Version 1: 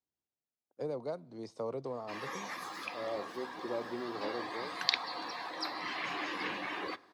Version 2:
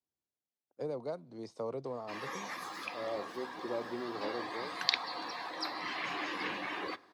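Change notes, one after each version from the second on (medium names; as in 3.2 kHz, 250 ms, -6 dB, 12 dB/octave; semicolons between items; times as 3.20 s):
first voice: send -8.0 dB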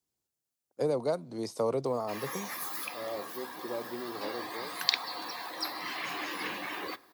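first voice +8.5 dB; master: remove distance through air 95 m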